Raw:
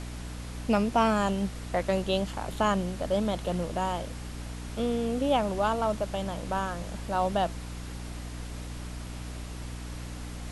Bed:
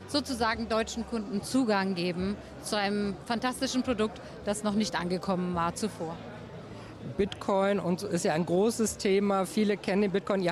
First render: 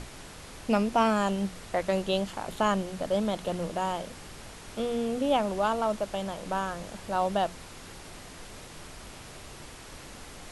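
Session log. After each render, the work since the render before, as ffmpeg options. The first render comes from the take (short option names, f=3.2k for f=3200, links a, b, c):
-af "bandreject=f=60:t=h:w=6,bandreject=f=120:t=h:w=6,bandreject=f=180:t=h:w=6,bandreject=f=240:t=h:w=6,bandreject=f=300:t=h:w=6"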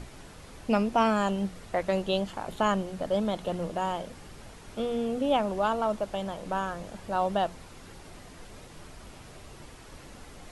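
-af "afftdn=nr=6:nf=-46"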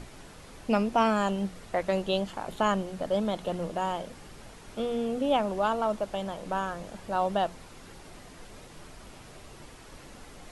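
-af "equalizer=f=72:t=o:w=1.6:g=-3.5"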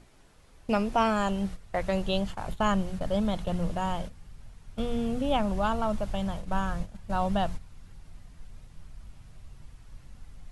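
-af "agate=range=-12dB:threshold=-38dB:ratio=16:detection=peak,asubboost=boost=9.5:cutoff=120"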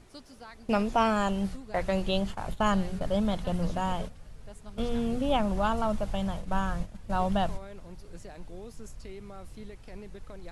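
-filter_complex "[1:a]volume=-19.5dB[a];[0:a][a]amix=inputs=2:normalize=0"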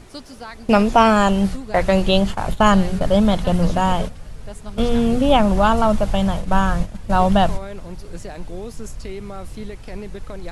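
-af "volume=12dB,alimiter=limit=-3dB:level=0:latency=1"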